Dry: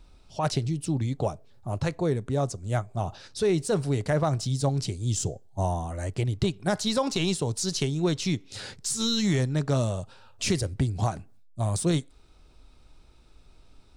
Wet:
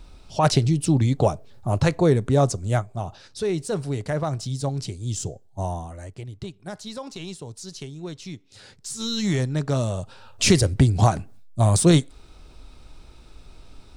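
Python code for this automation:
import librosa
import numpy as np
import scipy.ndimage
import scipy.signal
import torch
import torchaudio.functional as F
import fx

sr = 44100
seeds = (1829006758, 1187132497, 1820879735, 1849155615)

y = fx.gain(x, sr, db=fx.line((2.59, 8.0), (3.04, -1.0), (5.77, -1.0), (6.21, -9.5), (8.55, -9.5), (9.3, 1.5), (9.84, 1.5), (10.46, 9.0)))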